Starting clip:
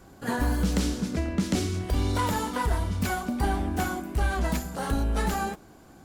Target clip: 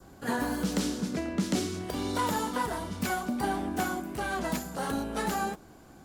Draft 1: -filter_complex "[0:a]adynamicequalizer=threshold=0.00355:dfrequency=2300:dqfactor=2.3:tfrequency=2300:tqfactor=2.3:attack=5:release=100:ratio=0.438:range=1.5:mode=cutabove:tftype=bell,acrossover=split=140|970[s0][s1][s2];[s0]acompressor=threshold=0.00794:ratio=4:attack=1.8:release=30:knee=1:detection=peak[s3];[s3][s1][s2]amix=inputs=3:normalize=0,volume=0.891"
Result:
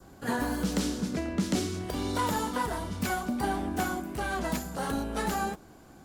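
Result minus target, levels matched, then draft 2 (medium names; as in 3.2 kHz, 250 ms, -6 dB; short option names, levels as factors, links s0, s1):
compression: peak gain reduction -6.5 dB
-filter_complex "[0:a]adynamicequalizer=threshold=0.00355:dfrequency=2300:dqfactor=2.3:tfrequency=2300:tqfactor=2.3:attack=5:release=100:ratio=0.438:range=1.5:mode=cutabove:tftype=bell,acrossover=split=140|970[s0][s1][s2];[s0]acompressor=threshold=0.00282:ratio=4:attack=1.8:release=30:knee=1:detection=peak[s3];[s3][s1][s2]amix=inputs=3:normalize=0,volume=0.891"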